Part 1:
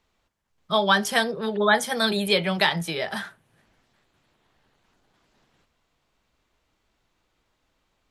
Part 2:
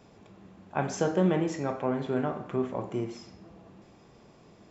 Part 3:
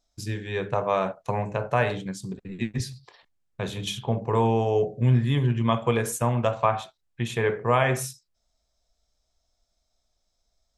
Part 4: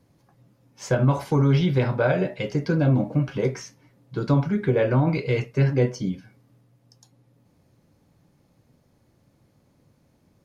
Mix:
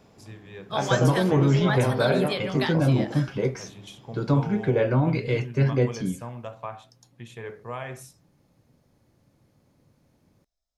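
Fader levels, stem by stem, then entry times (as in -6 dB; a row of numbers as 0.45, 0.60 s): -9.0, 0.0, -13.5, -1.5 dB; 0.00, 0.00, 0.00, 0.00 s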